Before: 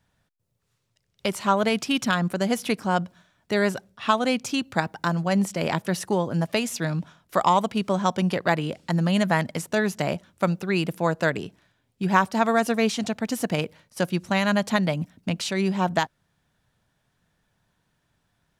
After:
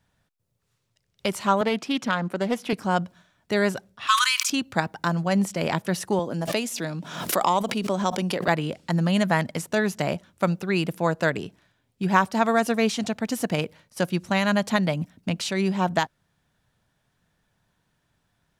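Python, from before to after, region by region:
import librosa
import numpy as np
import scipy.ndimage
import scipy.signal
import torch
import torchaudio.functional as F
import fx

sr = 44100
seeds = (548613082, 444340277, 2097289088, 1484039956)

y = fx.chain(x, sr, fx.highpass(hz=200.0, slope=12),
    fx.high_shelf(hz=4000.0, db=-10.0),
    fx.doppler_dist(depth_ms=0.16), at=(1.61, 2.73))
y = fx.chain(y, sr, fx.brickwall_highpass(low_hz=970.0),
    fx.high_shelf(hz=3400.0, db=9.0),
    fx.sustainer(db_per_s=29.0), at=(4.07, 4.5))
y = fx.chain(y, sr, fx.highpass(hz=210.0, slope=12),
    fx.peak_eq(hz=1400.0, db=-4.0, octaves=2.1),
    fx.pre_swell(db_per_s=65.0), at=(6.19, 8.48))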